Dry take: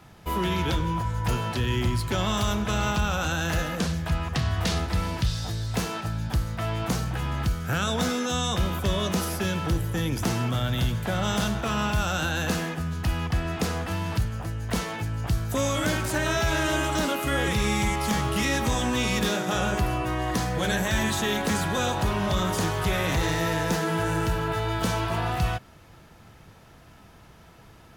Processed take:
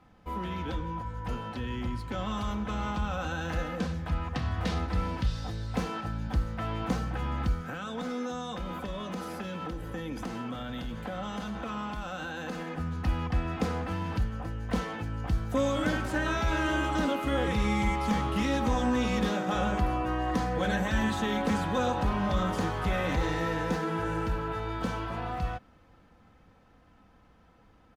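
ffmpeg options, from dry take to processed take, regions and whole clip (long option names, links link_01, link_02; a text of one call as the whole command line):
ffmpeg -i in.wav -filter_complex "[0:a]asettb=1/sr,asplit=3[link_01][link_02][link_03];[link_01]atrim=end=7.614[link_04];[link_02]atrim=start=7.61:end=12.76,asetpts=PTS-STARTPTS,afade=type=in:duration=0.004:curve=qsin,afade=type=out:start_time=5.146:duration=0.004:curve=qsin,equalizer=frequency=86:width_type=o:width=0.79:gain=-14,acompressor=threshold=-29dB:ratio=6:attack=3.2:release=140:knee=1:detection=peak,bandreject=frequency=5600:width=29[link_05];[link_03]atrim=start=12.756[link_06];[link_04][link_05]acrossfade=duration=0.004:curve1=hsin:curve2=qsin[link_07];[link_07][link_06]acrossfade=duration=0.004:curve1=qsin:curve2=hsin,lowpass=frequency=1800:poles=1,aecho=1:1:3.9:0.49,dynaudnorm=framelen=350:gausssize=21:maxgain=5.5dB,volume=-8dB" out.wav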